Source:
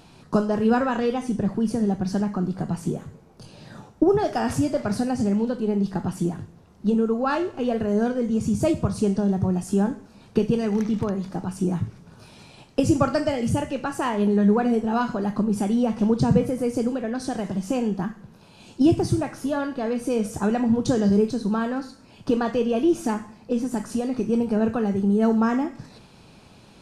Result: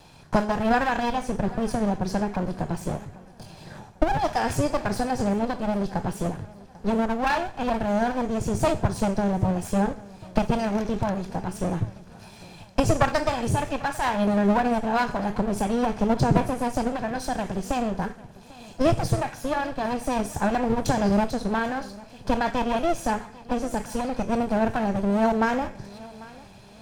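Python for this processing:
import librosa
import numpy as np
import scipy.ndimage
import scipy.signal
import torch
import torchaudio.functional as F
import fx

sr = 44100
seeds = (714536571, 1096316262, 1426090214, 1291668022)

y = fx.lower_of_two(x, sr, delay_ms=1.2)
y = fx.peak_eq(y, sr, hz=220.0, db=-4.5, octaves=0.64)
y = fx.echo_feedback(y, sr, ms=795, feedback_pct=40, wet_db=-21)
y = y * librosa.db_to_amplitude(1.5)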